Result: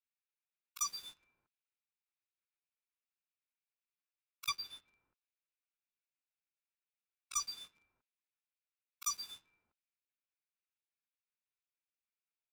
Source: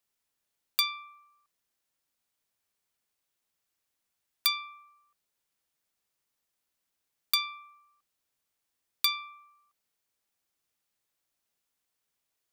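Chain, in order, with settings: 4.47–7.65 LPF 4500 Hz -> 10000 Hz 24 dB/oct; low-pass opened by the level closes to 750 Hz, open at -33 dBFS; spectral gate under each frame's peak -20 dB weak; comb 0.8 ms, depth 39%; negative-ratio compressor -52 dBFS, ratio -0.5; sample leveller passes 3; gain +7 dB

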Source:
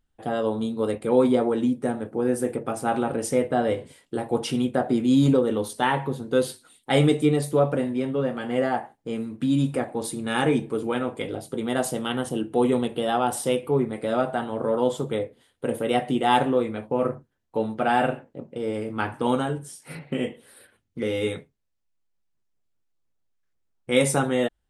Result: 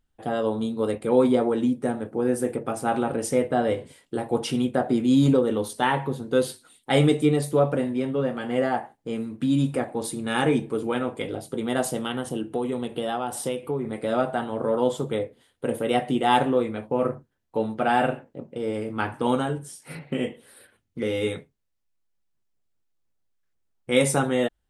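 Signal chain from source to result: 12.01–13.85 compressor, threshold -24 dBFS, peak gain reduction 8 dB

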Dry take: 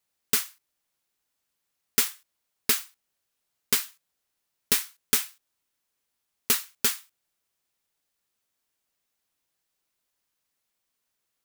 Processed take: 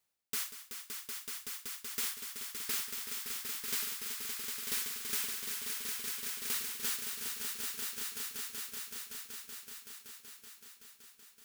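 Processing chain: reverse; compressor 6:1, threshold -35 dBFS, peak gain reduction 17.5 dB; reverse; swelling echo 0.189 s, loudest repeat 5, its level -6 dB

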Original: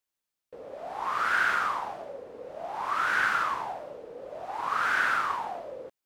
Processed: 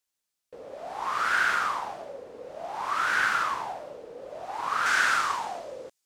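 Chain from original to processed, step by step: bell 6900 Hz +6 dB 2 oct, from 4.86 s +13.5 dB

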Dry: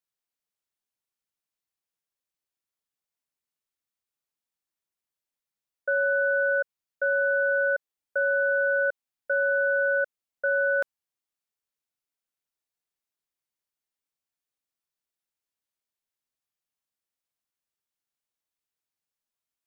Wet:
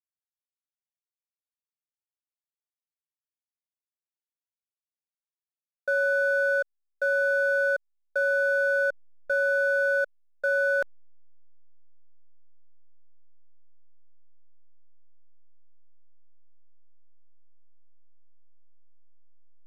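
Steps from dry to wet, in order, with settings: backlash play -39.5 dBFS

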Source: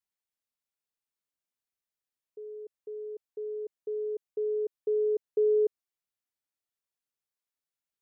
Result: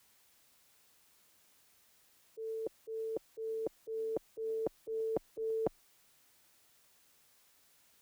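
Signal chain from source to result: frequency shift +20 Hz; auto swell 0.133 s; spectral compressor 4:1; gain +1.5 dB

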